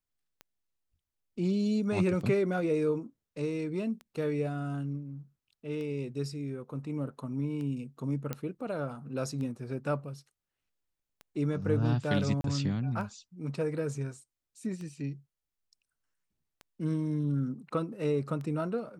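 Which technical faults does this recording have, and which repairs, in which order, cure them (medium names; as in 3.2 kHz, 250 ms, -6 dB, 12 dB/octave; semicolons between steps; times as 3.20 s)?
tick 33 1/3 rpm -30 dBFS
8.33 s: pop -19 dBFS
12.41–12.44 s: dropout 32 ms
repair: de-click; interpolate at 12.41 s, 32 ms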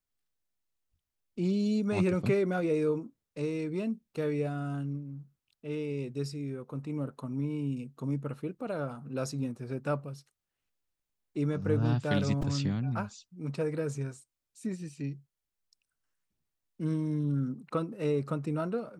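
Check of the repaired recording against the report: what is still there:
nothing left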